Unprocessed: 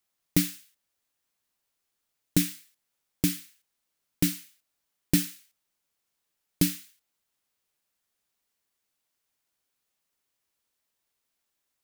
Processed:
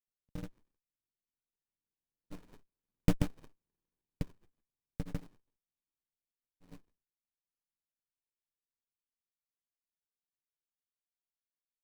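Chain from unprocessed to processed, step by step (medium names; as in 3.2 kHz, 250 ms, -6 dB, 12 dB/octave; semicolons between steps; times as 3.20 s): Doppler pass-by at 3.39 s, 8 m/s, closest 2.4 m; granulator 93 ms; sliding maximum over 65 samples; trim +1 dB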